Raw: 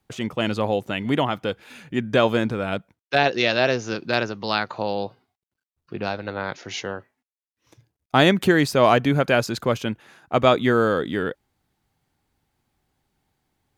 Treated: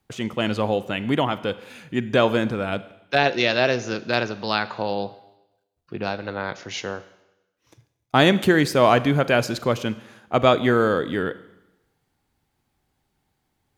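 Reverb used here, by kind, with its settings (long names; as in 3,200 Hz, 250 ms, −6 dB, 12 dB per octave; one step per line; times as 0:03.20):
four-comb reverb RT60 0.96 s, combs from 33 ms, DRR 15 dB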